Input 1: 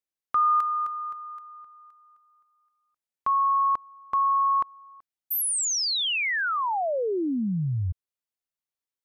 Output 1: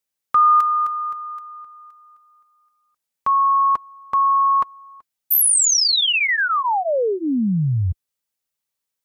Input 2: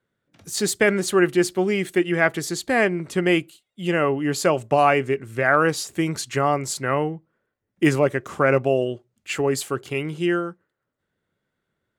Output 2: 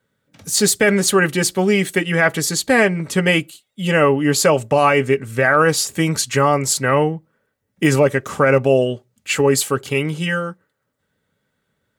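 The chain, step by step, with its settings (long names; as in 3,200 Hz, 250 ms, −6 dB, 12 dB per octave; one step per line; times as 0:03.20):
high-shelf EQ 4,300 Hz +5 dB
notch comb filter 350 Hz
boost into a limiter +11 dB
level −3.5 dB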